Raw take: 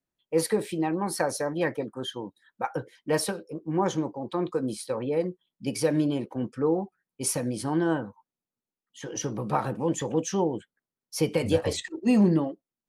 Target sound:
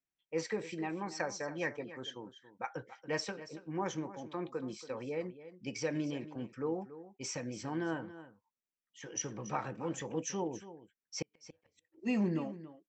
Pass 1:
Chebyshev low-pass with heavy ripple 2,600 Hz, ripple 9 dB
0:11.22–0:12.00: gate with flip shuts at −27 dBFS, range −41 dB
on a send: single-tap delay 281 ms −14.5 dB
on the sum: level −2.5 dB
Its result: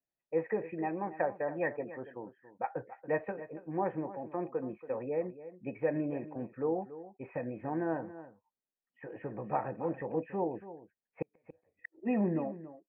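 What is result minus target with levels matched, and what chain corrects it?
2,000 Hz band −3.5 dB
Chebyshev low-pass with heavy ripple 7,800 Hz, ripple 9 dB
0:11.22–0:12.00: gate with flip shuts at −27 dBFS, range −41 dB
on a send: single-tap delay 281 ms −14.5 dB
on the sum: level −2.5 dB

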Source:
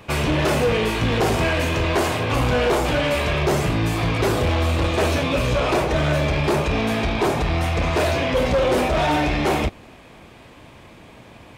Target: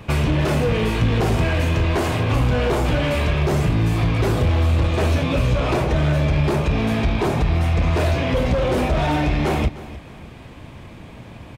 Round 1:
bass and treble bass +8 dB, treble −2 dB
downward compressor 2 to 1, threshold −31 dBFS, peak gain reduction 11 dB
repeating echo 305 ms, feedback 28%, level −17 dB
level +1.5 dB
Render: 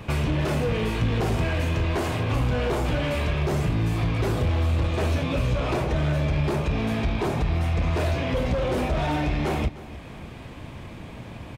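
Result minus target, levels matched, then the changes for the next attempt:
downward compressor: peak gain reduction +5.5 dB
change: downward compressor 2 to 1, threshold −20.5 dBFS, peak gain reduction 6 dB

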